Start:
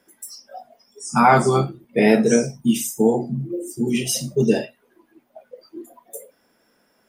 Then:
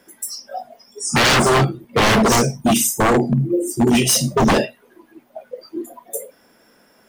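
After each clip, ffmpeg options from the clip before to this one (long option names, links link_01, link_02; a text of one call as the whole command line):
ffmpeg -i in.wav -af "aeval=exprs='0.133*(abs(mod(val(0)/0.133+3,4)-2)-1)':channel_layout=same,volume=8.5dB" out.wav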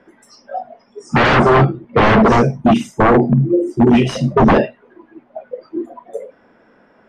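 ffmpeg -i in.wav -af "lowpass=1900,volume=4.5dB" out.wav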